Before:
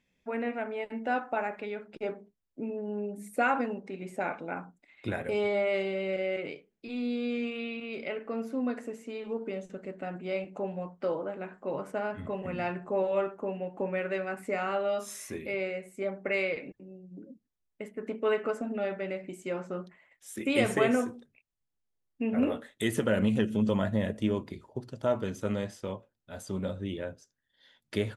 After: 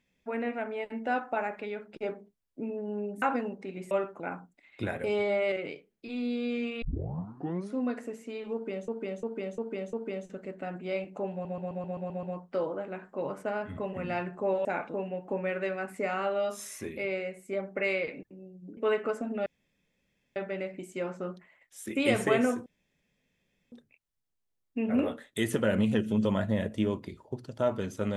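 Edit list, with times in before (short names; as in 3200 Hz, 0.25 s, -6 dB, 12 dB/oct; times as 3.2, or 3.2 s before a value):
3.22–3.47 cut
4.16–4.45 swap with 13.14–13.43
5.77–6.32 cut
7.62 tape start 0.95 s
9.33–9.68 loop, 5 plays
10.72 stutter 0.13 s, 8 plays
17.26–18.17 cut
18.86 insert room tone 0.90 s
21.16 insert room tone 1.06 s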